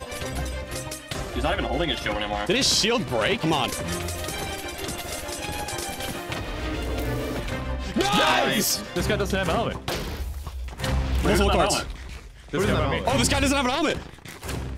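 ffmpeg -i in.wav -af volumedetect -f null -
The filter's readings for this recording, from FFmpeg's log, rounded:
mean_volume: -25.5 dB
max_volume: -7.0 dB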